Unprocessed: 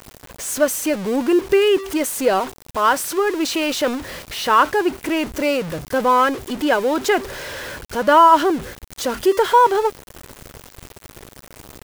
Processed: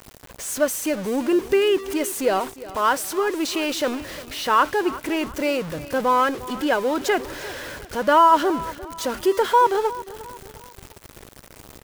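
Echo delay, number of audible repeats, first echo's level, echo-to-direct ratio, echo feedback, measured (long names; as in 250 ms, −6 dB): 354 ms, 3, −17.0 dB, −16.0 dB, 41%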